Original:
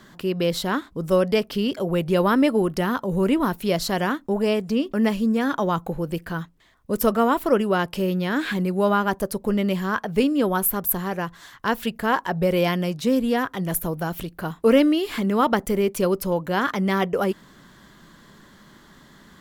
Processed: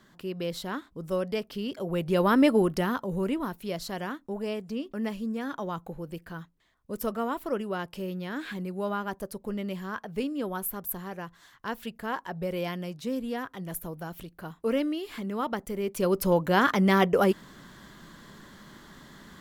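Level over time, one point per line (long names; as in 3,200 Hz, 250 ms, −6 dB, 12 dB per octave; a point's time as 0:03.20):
0:01.62 −10 dB
0:02.51 −1 dB
0:03.53 −11 dB
0:15.75 −11 dB
0:16.28 +0.5 dB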